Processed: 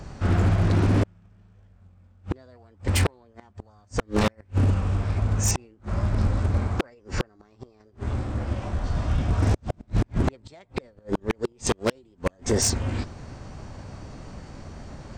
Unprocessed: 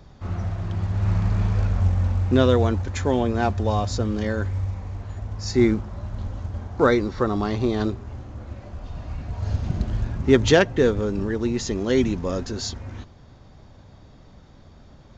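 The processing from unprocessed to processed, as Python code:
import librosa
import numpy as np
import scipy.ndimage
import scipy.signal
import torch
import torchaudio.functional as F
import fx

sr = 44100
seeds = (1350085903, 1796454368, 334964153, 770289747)

y = fx.gate_flip(x, sr, shuts_db=-15.0, range_db=-41)
y = 10.0 ** (-22.5 / 20.0) * (np.abs((y / 10.0 ** (-22.5 / 20.0) + 3.0) % 4.0 - 2.0) - 1.0)
y = fx.formant_shift(y, sr, semitones=4)
y = y * librosa.db_to_amplitude(8.0)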